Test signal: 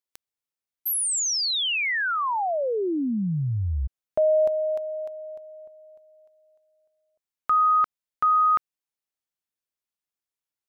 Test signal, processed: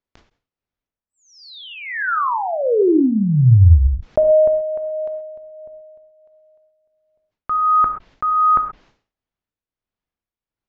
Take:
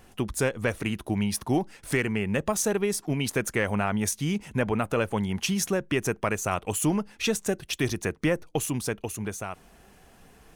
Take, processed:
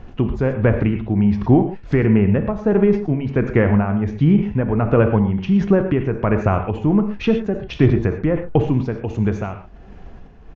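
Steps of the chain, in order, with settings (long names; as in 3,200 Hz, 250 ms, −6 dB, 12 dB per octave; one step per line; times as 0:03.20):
treble cut that deepens with the level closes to 2,000 Hz, closed at −23.5 dBFS
spectral tilt −2.5 dB per octave
amplitude tremolo 1.4 Hz, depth 56%
high-frequency loss of the air 130 metres
reverb whose tail is shaped and stops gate 150 ms flat, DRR 7 dB
downsampling to 16,000 Hz
level that may fall only so fast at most 140 dB per second
level +8 dB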